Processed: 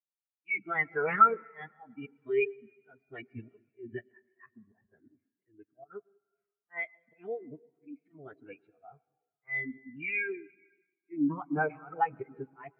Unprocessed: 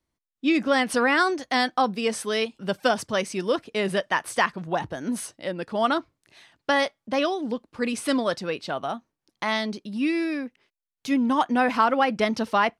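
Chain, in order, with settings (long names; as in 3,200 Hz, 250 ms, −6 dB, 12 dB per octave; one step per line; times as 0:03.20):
loudspeaker in its box 130–4,200 Hz, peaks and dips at 140 Hz −8 dB, 270 Hz −7 dB, 570 Hz −8 dB, 910 Hz −7 dB, 2,300 Hz +7 dB, 3,200 Hz −7 dB
volume swells 170 ms
phase-vocoder pitch shift with formants kept −8.5 semitones
on a send at −7.5 dB: convolution reverb RT60 3.3 s, pre-delay 93 ms
on the sum: every bin expanded away from the loudest bin 2.5 to 1
level +2 dB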